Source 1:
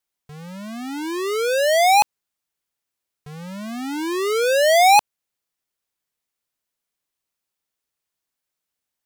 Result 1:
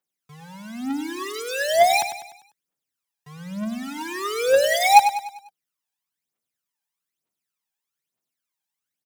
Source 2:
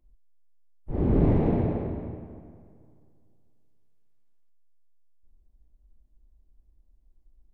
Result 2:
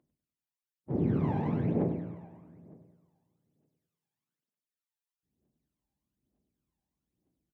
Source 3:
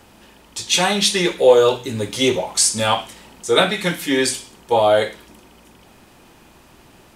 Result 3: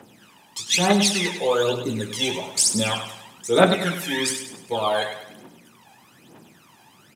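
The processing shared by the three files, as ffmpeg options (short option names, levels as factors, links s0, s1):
-filter_complex "[0:a]highpass=f=130:w=0.5412,highpass=f=130:w=1.3066,bandreject=f=4400:w=20,aphaser=in_gain=1:out_gain=1:delay=1.3:decay=0.75:speed=1.1:type=triangular,asplit=2[s0][s1];[s1]aecho=0:1:99|198|297|396|495:0.316|0.142|0.064|0.0288|0.013[s2];[s0][s2]amix=inputs=2:normalize=0,volume=0.473"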